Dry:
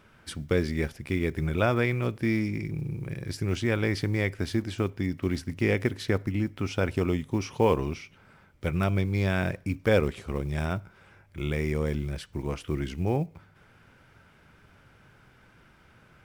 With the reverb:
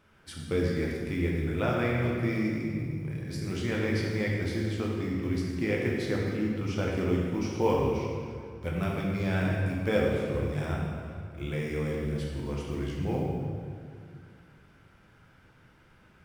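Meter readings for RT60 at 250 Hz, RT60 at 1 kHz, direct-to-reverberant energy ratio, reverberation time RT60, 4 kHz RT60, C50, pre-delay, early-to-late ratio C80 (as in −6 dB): 2.6 s, 2.0 s, −3.0 dB, 2.2 s, 1.6 s, 0.0 dB, 9 ms, 1.5 dB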